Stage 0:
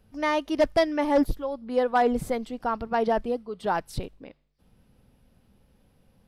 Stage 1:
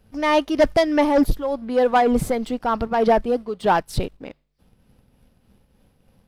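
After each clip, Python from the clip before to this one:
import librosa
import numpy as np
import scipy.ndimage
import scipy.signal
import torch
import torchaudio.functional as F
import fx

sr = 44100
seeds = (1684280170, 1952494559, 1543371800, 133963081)

y = fx.leveller(x, sr, passes=1)
y = fx.tremolo_shape(y, sr, shape='triangle', hz=3.3, depth_pct=45)
y = y * librosa.db_to_amplitude(6.5)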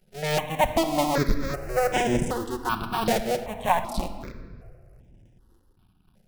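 y = fx.cycle_switch(x, sr, every=2, mode='muted')
y = fx.room_shoebox(y, sr, seeds[0], volume_m3=3000.0, walls='mixed', distance_m=0.99)
y = fx.phaser_held(y, sr, hz=2.6, low_hz=290.0, high_hz=4300.0)
y = y * librosa.db_to_amplitude(-1.0)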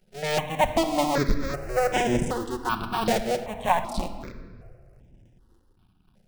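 y = fx.peak_eq(x, sr, hz=12000.0, db=-11.0, octaves=0.22)
y = fx.hum_notches(y, sr, base_hz=50, count=3)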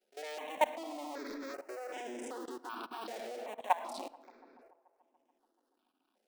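y = scipy.signal.sosfilt(scipy.signal.ellip(4, 1.0, 40, 260.0, 'highpass', fs=sr, output='sos'), x)
y = fx.level_steps(y, sr, step_db=19)
y = fx.echo_wet_bandpass(y, sr, ms=144, feedback_pct=75, hz=690.0, wet_db=-23.5)
y = y * librosa.db_to_amplitude(-4.5)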